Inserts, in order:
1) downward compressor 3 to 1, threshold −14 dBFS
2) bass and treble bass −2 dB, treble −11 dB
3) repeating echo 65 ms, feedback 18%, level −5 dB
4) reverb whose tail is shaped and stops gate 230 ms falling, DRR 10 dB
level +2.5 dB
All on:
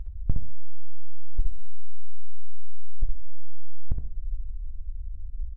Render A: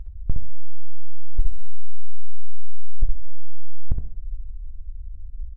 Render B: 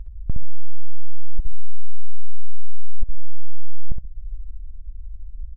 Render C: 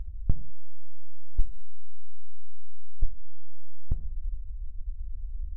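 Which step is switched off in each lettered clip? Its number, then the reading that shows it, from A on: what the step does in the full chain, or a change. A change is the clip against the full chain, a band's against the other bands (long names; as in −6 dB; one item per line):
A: 1, change in momentary loudness spread +2 LU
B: 4, change in crest factor −5.0 dB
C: 3, echo-to-direct ratio −3.5 dB to −10.0 dB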